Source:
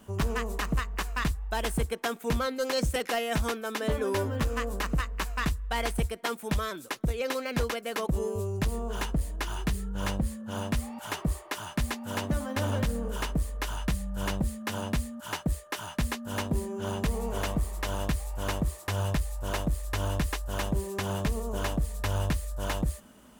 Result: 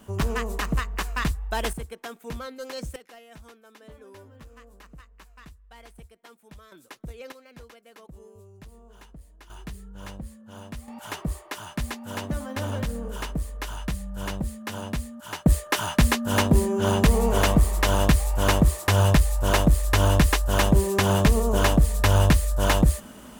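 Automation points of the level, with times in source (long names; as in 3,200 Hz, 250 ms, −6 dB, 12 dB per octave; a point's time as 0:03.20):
+3 dB
from 0:01.73 −7 dB
from 0:02.96 −19 dB
from 0:06.72 −10 dB
from 0:07.32 −18 dB
from 0:09.50 −9 dB
from 0:10.88 −0.5 dB
from 0:15.46 +10.5 dB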